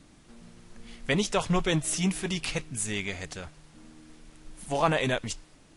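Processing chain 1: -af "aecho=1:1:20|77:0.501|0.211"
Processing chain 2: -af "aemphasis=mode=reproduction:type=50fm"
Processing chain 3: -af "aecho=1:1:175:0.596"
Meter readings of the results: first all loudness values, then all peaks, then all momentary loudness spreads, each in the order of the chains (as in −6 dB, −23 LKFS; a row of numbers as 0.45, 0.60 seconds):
−28.0, −29.5, −27.5 LKFS; −10.5, −10.5, −10.0 dBFS; 14, 15, 15 LU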